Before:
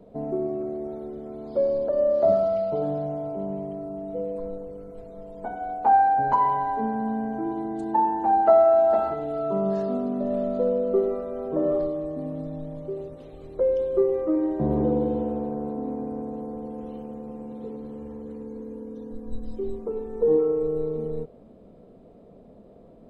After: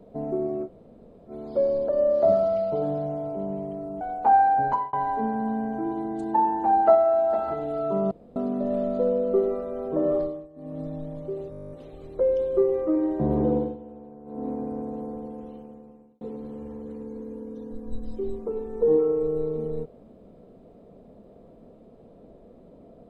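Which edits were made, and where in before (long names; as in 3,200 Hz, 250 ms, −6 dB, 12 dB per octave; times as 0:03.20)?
0:00.66–0:01.30: fill with room tone, crossfade 0.06 s
0:04.01–0:05.61: remove
0:06.25–0:06.53: fade out
0:08.55–0:09.08: clip gain −3.5 dB
0:09.71–0:09.96: fill with room tone
0:11.79–0:12.43: duck −18 dB, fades 0.29 s
0:13.11: stutter 0.02 s, 11 plays
0:14.96–0:15.86: duck −15 dB, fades 0.21 s
0:16.47–0:17.61: fade out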